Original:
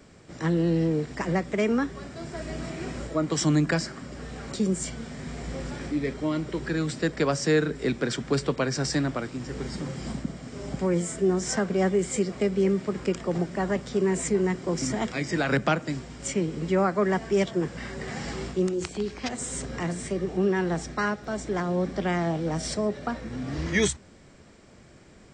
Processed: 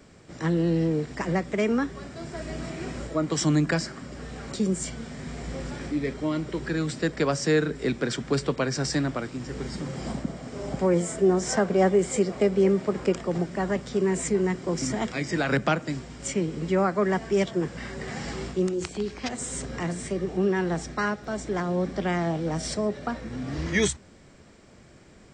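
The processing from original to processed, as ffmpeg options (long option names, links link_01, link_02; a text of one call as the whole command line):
ffmpeg -i in.wav -filter_complex "[0:a]asettb=1/sr,asplit=3[link_01][link_02][link_03];[link_01]atrim=end=9.934[link_04];[link_02]atrim=start=9.93:end=13.21,asetpts=PTS-STARTPTS,afade=type=in:duration=0.004:curve=qsin,afade=type=out:start_time=3.276:duration=0.004:curve=qsin,equalizer=frequency=670:width=0.85:gain=6[link_05];[link_03]atrim=start=13.206[link_06];[link_04][link_05]acrossfade=duration=0.004:curve1=hsin:curve2=qsin[link_07];[link_07][link_06]acrossfade=duration=0.004:curve1=qsin:curve2=hsin" out.wav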